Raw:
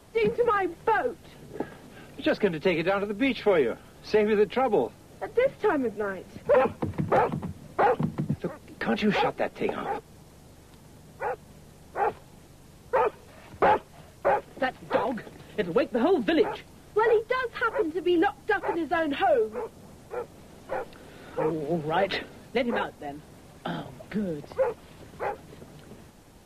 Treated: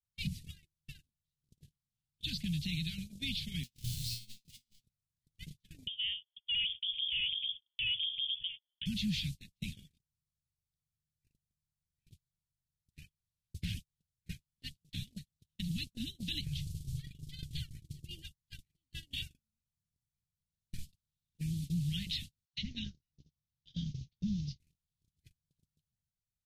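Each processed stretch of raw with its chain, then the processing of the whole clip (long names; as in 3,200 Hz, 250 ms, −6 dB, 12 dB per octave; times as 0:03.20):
0:03.63–0:04.84: sign of each sample alone + high-shelf EQ 4,800 Hz −8 dB + tuned comb filter 120 Hz, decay 0.87 s, mix 90%
0:05.87–0:08.86: tube saturation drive 23 dB, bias 0.55 + voice inversion scrambler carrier 3,400 Hz
0:16.41–0:18.11: low shelf with overshoot 180 Hz +6.5 dB, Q 3 + downward compressor 1.5 to 1, threshold −36 dBFS
0:22.45–0:24.59: Butterworth low-pass 6,400 Hz 72 dB per octave + double-tracking delay 15 ms −11 dB + multiband delay without the direct sound highs, lows 80 ms, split 1,500 Hz
whole clip: inverse Chebyshev band-stop filter 450–1,200 Hz, stop band 70 dB; noise gate −45 dBFS, range −45 dB; brickwall limiter −33.5 dBFS; level +6.5 dB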